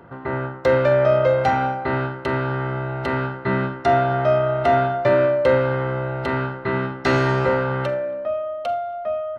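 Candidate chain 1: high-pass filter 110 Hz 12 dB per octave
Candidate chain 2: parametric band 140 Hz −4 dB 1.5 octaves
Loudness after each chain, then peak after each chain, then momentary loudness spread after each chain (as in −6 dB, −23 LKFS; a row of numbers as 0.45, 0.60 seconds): −21.0, −21.5 LKFS; −5.5, −5.5 dBFS; 9, 9 LU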